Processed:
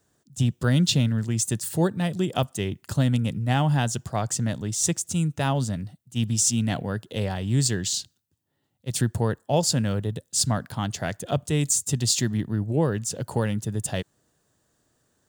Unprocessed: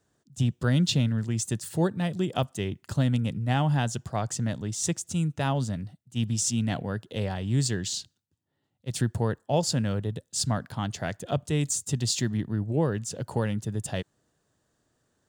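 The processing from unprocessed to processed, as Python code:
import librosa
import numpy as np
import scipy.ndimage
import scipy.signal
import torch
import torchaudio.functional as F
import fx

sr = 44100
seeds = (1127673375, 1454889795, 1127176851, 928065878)

y = fx.high_shelf(x, sr, hz=8700.0, db=9.0)
y = F.gain(torch.from_numpy(y), 2.5).numpy()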